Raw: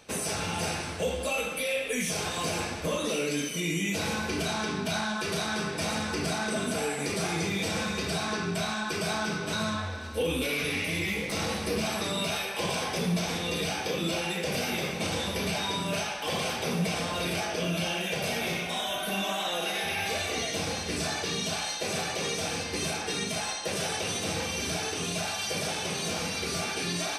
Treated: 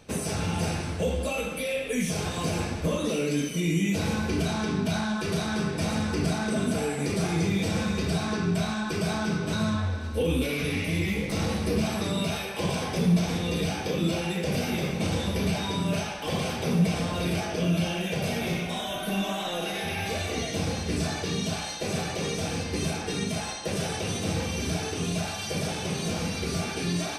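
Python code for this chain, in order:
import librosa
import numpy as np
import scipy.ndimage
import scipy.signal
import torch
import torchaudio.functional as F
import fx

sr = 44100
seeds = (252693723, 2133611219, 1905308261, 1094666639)

y = fx.low_shelf(x, sr, hz=350.0, db=12.0)
y = y * 10.0 ** (-2.5 / 20.0)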